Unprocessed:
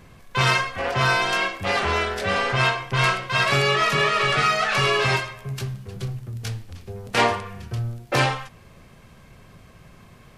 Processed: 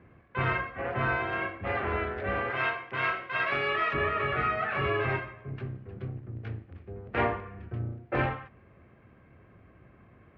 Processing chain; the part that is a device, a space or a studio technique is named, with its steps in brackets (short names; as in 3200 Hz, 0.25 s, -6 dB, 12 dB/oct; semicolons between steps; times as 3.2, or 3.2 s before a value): sub-octave bass pedal (octaver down 2 oct, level +1 dB; speaker cabinet 62–2200 Hz, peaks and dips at 160 Hz -5 dB, 330 Hz +5 dB, 950 Hz -4 dB); 2.5–3.94 RIAA curve recording; gain -7 dB